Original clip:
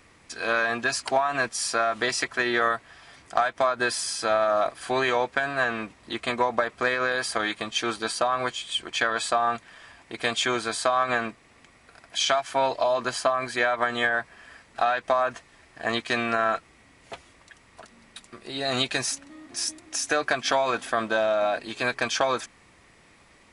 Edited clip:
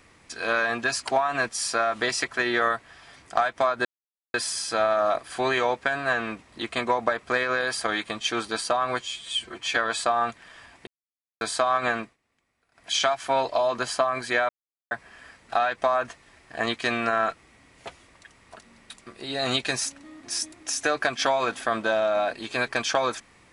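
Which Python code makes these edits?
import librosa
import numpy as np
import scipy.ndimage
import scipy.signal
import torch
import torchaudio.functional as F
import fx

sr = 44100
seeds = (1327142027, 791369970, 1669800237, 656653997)

y = fx.edit(x, sr, fx.insert_silence(at_s=3.85, length_s=0.49),
    fx.stretch_span(start_s=8.52, length_s=0.5, factor=1.5),
    fx.silence(start_s=10.13, length_s=0.54),
    fx.fade_down_up(start_s=11.2, length_s=1.01, db=-19.5, fade_s=0.23, curve='qsin'),
    fx.silence(start_s=13.75, length_s=0.42), tone=tone)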